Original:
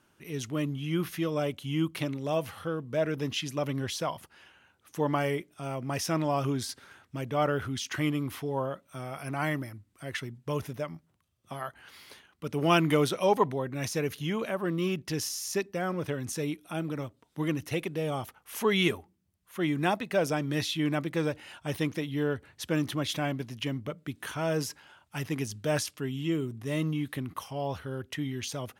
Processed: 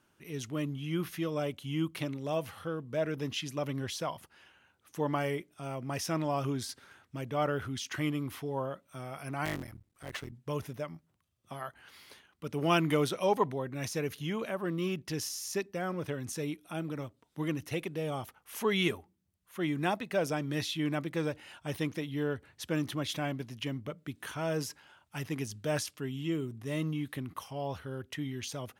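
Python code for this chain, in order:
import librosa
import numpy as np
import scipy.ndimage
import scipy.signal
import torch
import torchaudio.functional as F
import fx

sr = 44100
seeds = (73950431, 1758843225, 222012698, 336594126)

y = fx.cycle_switch(x, sr, every=3, mode='muted', at=(9.45, 10.32))
y = y * 10.0 ** (-3.5 / 20.0)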